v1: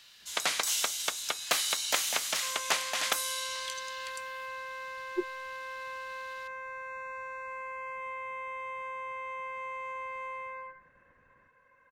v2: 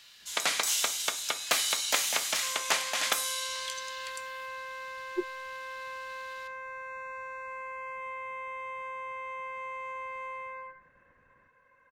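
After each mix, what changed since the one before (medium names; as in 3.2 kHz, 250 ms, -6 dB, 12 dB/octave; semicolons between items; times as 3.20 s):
first sound: send +11.5 dB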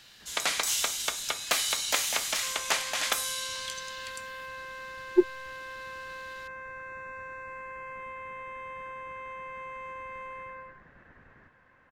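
speech +11.5 dB; second sound: send off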